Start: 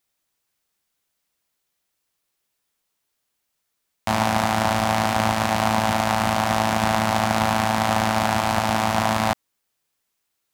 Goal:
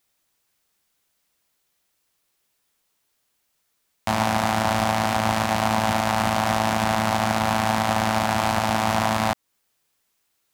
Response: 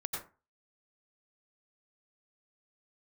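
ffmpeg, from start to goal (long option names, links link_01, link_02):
-af "alimiter=limit=-10.5dB:level=0:latency=1:release=231,volume=4.5dB"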